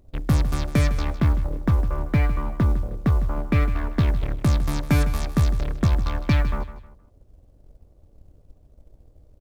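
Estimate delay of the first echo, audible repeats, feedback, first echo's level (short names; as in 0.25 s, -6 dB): 0.156 s, 3, 32%, -13.5 dB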